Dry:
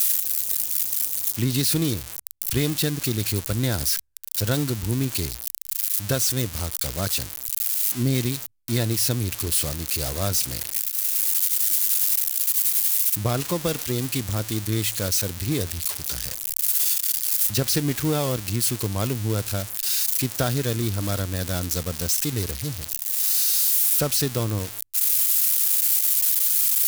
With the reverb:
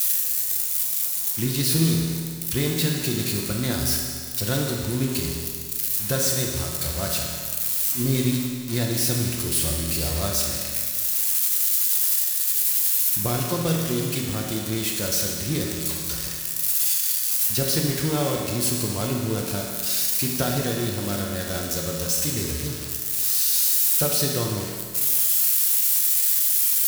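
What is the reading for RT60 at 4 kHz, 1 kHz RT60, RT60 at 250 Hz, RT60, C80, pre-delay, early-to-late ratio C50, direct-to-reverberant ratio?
1.9 s, 2.0 s, 2.0 s, 2.0 s, 3.5 dB, 5 ms, 1.5 dB, -1.0 dB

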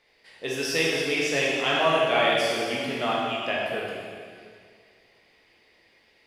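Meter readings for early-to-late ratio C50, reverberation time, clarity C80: -1.5 dB, 2.1 s, 0.5 dB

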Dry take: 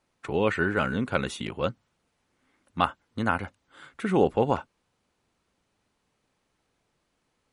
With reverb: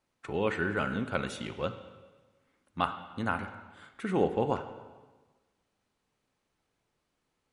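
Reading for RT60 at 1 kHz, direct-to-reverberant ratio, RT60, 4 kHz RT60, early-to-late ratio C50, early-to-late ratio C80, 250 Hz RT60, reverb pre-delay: 1.3 s, 9.0 dB, 1.3 s, 1.2 s, 10.5 dB, 12.0 dB, 1.3 s, 14 ms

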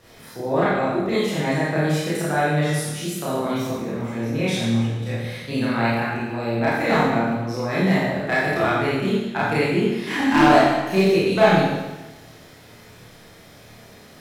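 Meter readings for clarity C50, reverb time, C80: -2.5 dB, 1.1 s, 1.0 dB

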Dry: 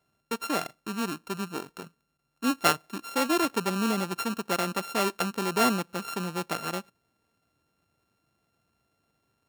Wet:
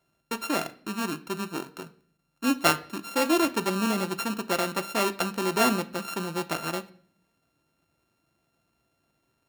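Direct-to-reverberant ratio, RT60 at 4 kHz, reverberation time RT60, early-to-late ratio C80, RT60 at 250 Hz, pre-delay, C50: 8.5 dB, 0.45 s, 0.55 s, 21.5 dB, 0.75 s, 3 ms, 18.0 dB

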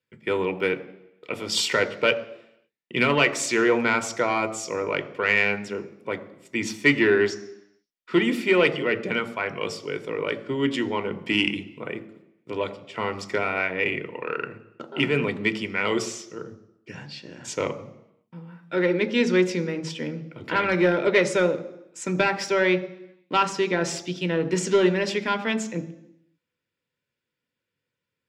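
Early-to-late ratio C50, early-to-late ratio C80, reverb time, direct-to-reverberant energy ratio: 15.5 dB, 17.5 dB, 0.85 s, 10.0 dB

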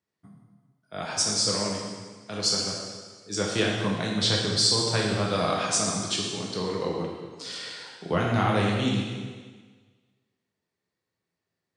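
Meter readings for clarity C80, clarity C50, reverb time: 3.0 dB, 1.5 dB, 1.5 s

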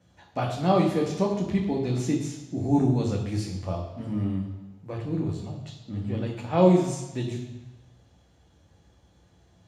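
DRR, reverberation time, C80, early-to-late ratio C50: -2.0 dB, 1.1 s, 8.0 dB, 6.0 dB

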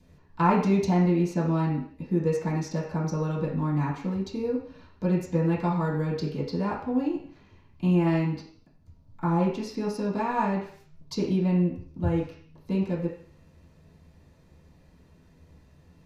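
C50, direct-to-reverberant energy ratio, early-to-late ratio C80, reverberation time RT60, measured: 5.5 dB, -11.0 dB, 9.0 dB, 0.55 s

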